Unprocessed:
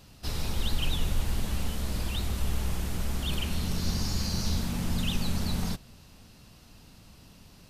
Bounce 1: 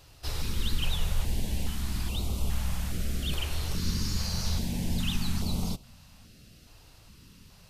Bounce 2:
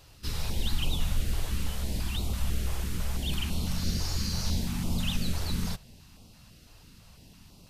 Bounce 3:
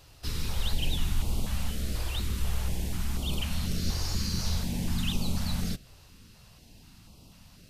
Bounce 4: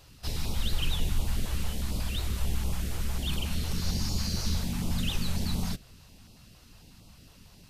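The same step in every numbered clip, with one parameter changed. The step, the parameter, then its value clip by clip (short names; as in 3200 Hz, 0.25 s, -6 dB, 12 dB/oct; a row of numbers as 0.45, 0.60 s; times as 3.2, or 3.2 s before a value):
stepped notch, rate: 2.4, 6, 4.1, 11 Hz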